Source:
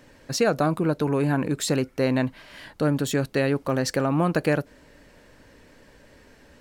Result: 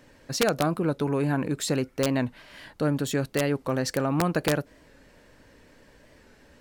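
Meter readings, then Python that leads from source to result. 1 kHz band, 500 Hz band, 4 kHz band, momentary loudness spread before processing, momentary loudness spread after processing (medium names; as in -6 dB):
-2.0 dB, -2.5 dB, -0.5 dB, 6 LU, 7 LU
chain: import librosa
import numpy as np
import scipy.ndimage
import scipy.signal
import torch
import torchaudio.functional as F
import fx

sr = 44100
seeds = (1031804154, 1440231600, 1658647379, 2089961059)

y = (np.mod(10.0 ** (11.5 / 20.0) * x + 1.0, 2.0) - 1.0) / 10.0 ** (11.5 / 20.0)
y = fx.record_warp(y, sr, rpm=45.0, depth_cents=100.0)
y = y * librosa.db_to_amplitude(-2.5)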